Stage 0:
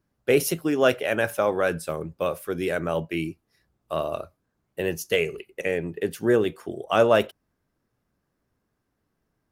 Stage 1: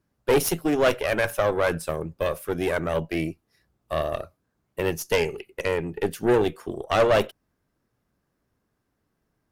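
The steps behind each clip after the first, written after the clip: tube stage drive 19 dB, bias 0.75; gain +5.5 dB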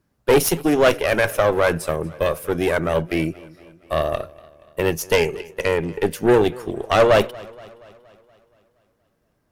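warbling echo 0.236 s, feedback 57%, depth 63 cents, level -22 dB; gain +5 dB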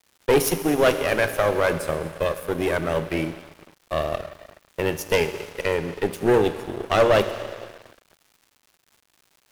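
Schroeder reverb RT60 2.7 s, combs from 31 ms, DRR 8.5 dB; crossover distortion -34.5 dBFS; crackle 290/s -42 dBFS; gain -2.5 dB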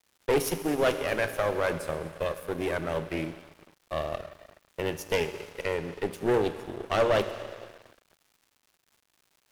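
Doppler distortion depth 0.16 ms; gain -6.5 dB

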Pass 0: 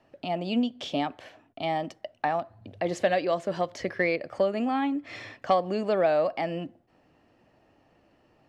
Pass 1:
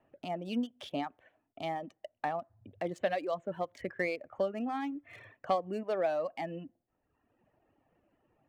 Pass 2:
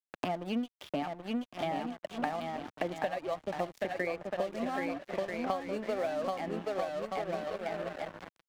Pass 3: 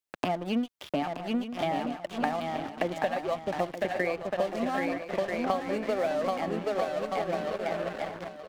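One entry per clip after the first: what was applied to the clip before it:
Wiener smoothing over 9 samples; reverb removal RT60 1.1 s; gain -6.5 dB
bouncing-ball echo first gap 0.78 s, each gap 0.65×, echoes 5; crossover distortion -46 dBFS; three-band squash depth 100%
echo 0.925 s -11 dB; gain +4.5 dB

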